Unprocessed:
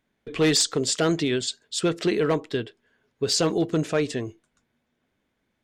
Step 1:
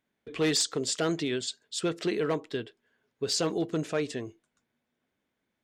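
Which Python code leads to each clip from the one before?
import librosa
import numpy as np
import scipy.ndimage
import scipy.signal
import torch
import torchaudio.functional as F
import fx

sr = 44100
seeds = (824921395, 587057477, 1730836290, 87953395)

y = fx.low_shelf(x, sr, hz=74.0, db=-11.0)
y = y * librosa.db_to_amplitude(-5.5)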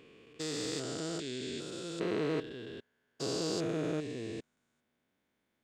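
y = fx.spec_steps(x, sr, hold_ms=400)
y = fx.rider(y, sr, range_db=4, speed_s=2.0)
y = y * librosa.db_to_amplitude(-2.0)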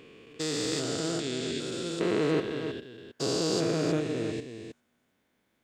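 y = x + 10.0 ** (-8.0 / 20.0) * np.pad(x, (int(314 * sr / 1000.0), 0))[:len(x)]
y = y * librosa.db_to_amplitude(6.0)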